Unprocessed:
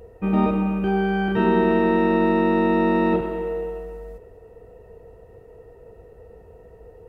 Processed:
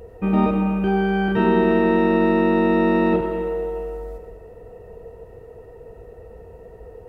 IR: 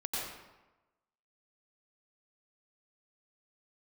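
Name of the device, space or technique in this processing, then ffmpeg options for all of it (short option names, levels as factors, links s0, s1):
ducked reverb: -filter_complex "[0:a]asplit=3[s0][s1][s2];[1:a]atrim=start_sample=2205[s3];[s1][s3]afir=irnorm=-1:irlink=0[s4];[s2]apad=whole_len=312448[s5];[s4][s5]sidechaincompress=threshold=0.0251:ratio=8:attack=16:release=578,volume=0.473[s6];[s0][s6]amix=inputs=2:normalize=0,volume=1.12"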